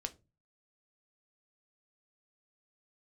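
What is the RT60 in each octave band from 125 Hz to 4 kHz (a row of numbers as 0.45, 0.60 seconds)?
0.55, 0.40, 0.30, 0.25, 0.20, 0.20 seconds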